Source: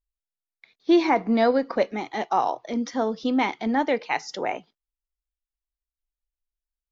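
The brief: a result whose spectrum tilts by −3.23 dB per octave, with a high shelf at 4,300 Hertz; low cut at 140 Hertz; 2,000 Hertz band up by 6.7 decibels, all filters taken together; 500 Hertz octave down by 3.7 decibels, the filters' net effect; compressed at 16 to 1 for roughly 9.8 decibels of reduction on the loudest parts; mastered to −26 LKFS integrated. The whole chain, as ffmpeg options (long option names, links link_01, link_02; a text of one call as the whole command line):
ffmpeg -i in.wav -af "highpass=140,equalizer=frequency=500:width_type=o:gain=-5.5,equalizer=frequency=2000:width_type=o:gain=6,highshelf=frequency=4300:gain=8,acompressor=threshold=-25dB:ratio=16,volume=4.5dB" out.wav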